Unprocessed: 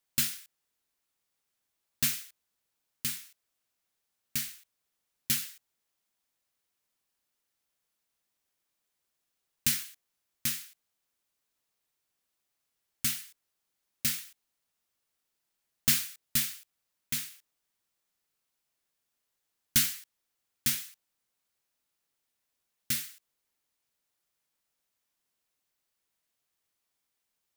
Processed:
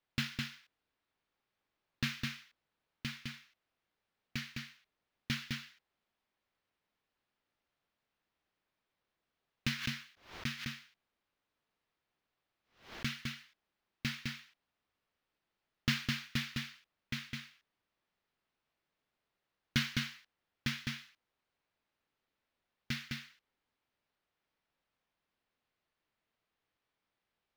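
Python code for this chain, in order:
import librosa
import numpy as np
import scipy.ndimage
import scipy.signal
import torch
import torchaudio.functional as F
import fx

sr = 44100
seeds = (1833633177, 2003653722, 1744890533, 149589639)

y = fx.air_absorb(x, sr, metres=270.0)
y = y + 10.0 ** (-3.5 / 20.0) * np.pad(y, (int(208 * sr / 1000.0), 0))[:len(y)]
y = fx.pre_swell(y, sr, db_per_s=130.0, at=(9.78, 13.07))
y = y * librosa.db_to_amplitude(2.5)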